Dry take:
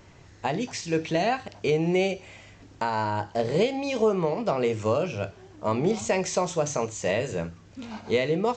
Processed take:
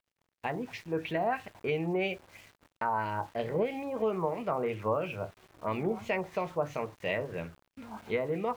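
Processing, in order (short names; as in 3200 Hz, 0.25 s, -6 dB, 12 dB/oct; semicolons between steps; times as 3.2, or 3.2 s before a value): LFO low-pass sine 3 Hz 970–2900 Hz; sample gate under -43.5 dBFS; gate -52 dBFS, range -19 dB; gain -8 dB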